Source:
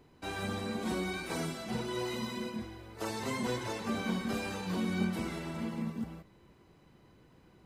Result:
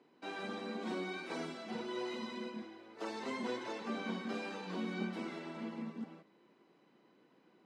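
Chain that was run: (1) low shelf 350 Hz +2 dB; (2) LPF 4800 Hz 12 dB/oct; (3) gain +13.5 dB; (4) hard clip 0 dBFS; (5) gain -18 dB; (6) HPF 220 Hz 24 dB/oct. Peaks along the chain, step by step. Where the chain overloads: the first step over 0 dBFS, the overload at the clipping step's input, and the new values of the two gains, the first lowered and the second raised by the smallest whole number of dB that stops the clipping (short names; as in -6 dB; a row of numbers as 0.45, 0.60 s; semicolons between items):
-18.0, -18.0, -4.5, -4.5, -22.5, -25.5 dBFS; no overload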